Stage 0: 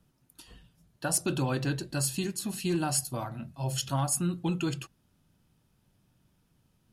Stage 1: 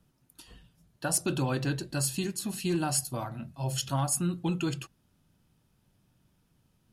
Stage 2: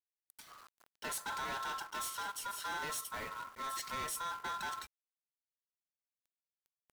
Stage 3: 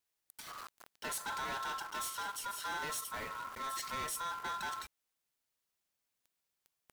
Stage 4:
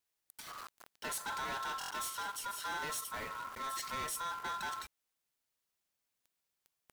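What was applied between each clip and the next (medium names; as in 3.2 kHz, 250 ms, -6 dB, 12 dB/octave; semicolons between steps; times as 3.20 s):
no audible change
companded quantiser 4-bit; ring modulator 1.2 kHz; overload inside the chain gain 34.5 dB; trim -2 dB
peak limiter -46 dBFS, peak gain reduction 9.5 dB; trim +10 dB
buffer glitch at 1.79 s, samples 1024, times 4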